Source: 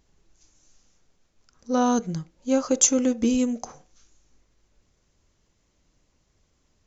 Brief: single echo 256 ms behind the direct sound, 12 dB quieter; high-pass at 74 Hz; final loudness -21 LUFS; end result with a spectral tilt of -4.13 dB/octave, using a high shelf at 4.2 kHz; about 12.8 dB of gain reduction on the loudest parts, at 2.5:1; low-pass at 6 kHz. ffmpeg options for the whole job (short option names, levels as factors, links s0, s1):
-af "highpass=74,lowpass=6000,highshelf=f=4200:g=6,acompressor=threshold=0.0224:ratio=2.5,aecho=1:1:256:0.251,volume=3.98"